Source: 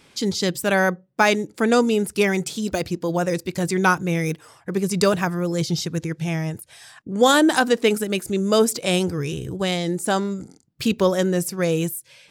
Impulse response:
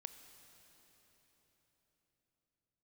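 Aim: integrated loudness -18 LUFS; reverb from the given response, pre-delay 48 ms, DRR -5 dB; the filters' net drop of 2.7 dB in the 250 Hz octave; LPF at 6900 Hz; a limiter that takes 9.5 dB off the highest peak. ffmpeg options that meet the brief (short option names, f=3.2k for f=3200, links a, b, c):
-filter_complex "[0:a]lowpass=6.9k,equalizer=f=250:t=o:g=-4,alimiter=limit=-14dB:level=0:latency=1,asplit=2[a][b];[1:a]atrim=start_sample=2205,adelay=48[c];[b][c]afir=irnorm=-1:irlink=0,volume=10dB[d];[a][d]amix=inputs=2:normalize=0,volume=1.5dB"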